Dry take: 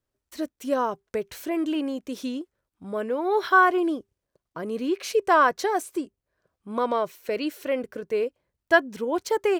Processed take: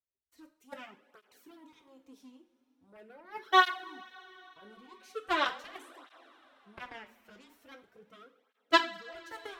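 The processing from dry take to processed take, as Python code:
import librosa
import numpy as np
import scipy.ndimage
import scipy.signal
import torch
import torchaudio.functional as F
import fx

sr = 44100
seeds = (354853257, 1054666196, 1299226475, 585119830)

p1 = 10.0 ** (-14.5 / 20.0) * np.tanh(x / 10.0 ** (-14.5 / 20.0))
p2 = x + (p1 * librosa.db_to_amplitude(-5.5))
p3 = fx.cheby_harmonics(p2, sr, harmonics=(3,), levels_db=(-9,), full_scale_db=-3.0)
p4 = fx.rev_double_slope(p3, sr, seeds[0], early_s=0.39, late_s=4.5, knee_db=-21, drr_db=5.5)
y = fx.flanger_cancel(p4, sr, hz=0.41, depth_ms=7.3)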